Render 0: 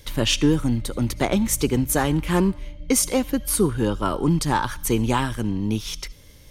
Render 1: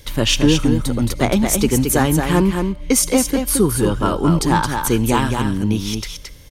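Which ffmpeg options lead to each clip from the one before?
-af "aecho=1:1:221:0.531,volume=4dB"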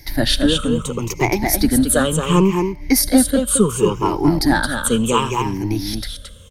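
-filter_complex "[0:a]afftfilt=real='re*pow(10,17/40*sin(2*PI*(0.75*log(max(b,1)*sr/1024/100)/log(2)-(-0.7)*(pts-256)/sr)))':imag='im*pow(10,17/40*sin(2*PI*(0.75*log(max(b,1)*sr/1024/100)/log(2)-(-0.7)*(pts-256)/sr)))':win_size=1024:overlap=0.75,acrossover=split=170|1800|4000[a][b][c][d];[a]aeval=exprs='clip(val(0),-1,0.0398)':c=same[e];[e][b][c][d]amix=inputs=4:normalize=0,volume=-2.5dB"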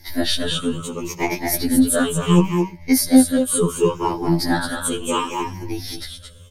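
-af "afftfilt=real='re*2*eq(mod(b,4),0)':imag='im*2*eq(mod(b,4),0)':win_size=2048:overlap=0.75,volume=-1dB"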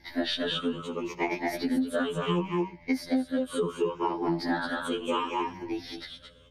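-filter_complex "[0:a]acrossover=split=190 4100:gain=0.0891 1 0.0708[a][b][c];[a][b][c]amix=inputs=3:normalize=0,acompressor=threshold=-20dB:ratio=10,aeval=exprs='val(0)+0.00141*(sin(2*PI*60*n/s)+sin(2*PI*2*60*n/s)/2+sin(2*PI*3*60*n/s)/3+sin(2*PI*4*60*n/s)/4+sin(2*PI*5*60*n/s)/5)':c=same,volume=-3.5dB"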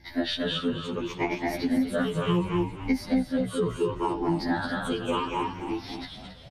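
-filter_complex "[0:a]equalizer=f=90:w=0.67:g=8,asplit=8[a][b][c][d][e][f][g][h];[b]adelay=272,afreqshift=-72,volume=-11dB[i];[c]adelay=544,afreqshift=-144,volume=-15.7dB[j];[d]adelay=816,afreqshift=-216,volume=-20.5dB[k];[e]adelay=1088,afreqshift=-288,volume=-25.2dB[l];[f]adelay=1360,afreqshift=-360,volume=-29.9dB[m];[g]adelay=1632,afreqshift=-432,volume=-34.7dB[n];[h]adelay=1904,afreqshift=-504,volume=-39.4dB[o];[a][i][j][k][l][m][n][o]amix=inputs=8:normalize=0"

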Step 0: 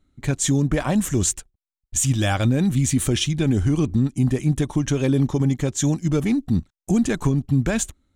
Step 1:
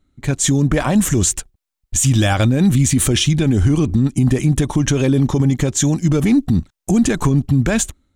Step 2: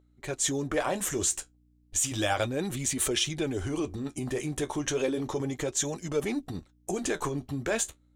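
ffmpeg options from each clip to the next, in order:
-af "dynaudnorm=f=170:g=5:m=11.5dB,alimiter=level_in=7.5dB:limit=-1dB:release=50:level=0:latency=1,volume=-6dB"
-af "flanger=delay=4.6:depth=9.3:regen=-50:speed=0.33:shape=sinusoidal,aeval=exprs='val(0)+0.00501*(sin(2*PI*60*n/s)+sin(2*PI*2*60*n/s)/2+sin(2*PI*3*60*n/s)/3+sin(2*PI*4*60*n/s)/4+sin(2*PI*5*60*n/s)/5)':c=same,lowshelf=f=290:t=q:w=1.5:g=-11,volume=-5.5dB"

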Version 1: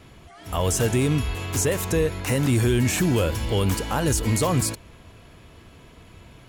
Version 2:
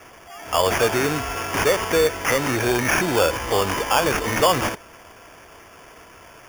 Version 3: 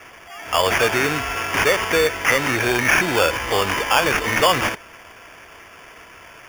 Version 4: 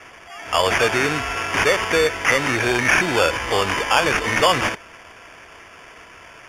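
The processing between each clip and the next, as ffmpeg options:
-filter_complex "[0:a]acrossover=split=430 6400:gain=0.126 1 0.2[a][b][c];[a][b][c]amix=inputs=3:normalize=0,acrusher=samples=11:mix=1:aa=0.000001,volume=9dB"
-af "equalizer=f=2.2k:t=o:w=1.6:g=7.5,volume=-1dB"
-af "lowpass=9.8k"

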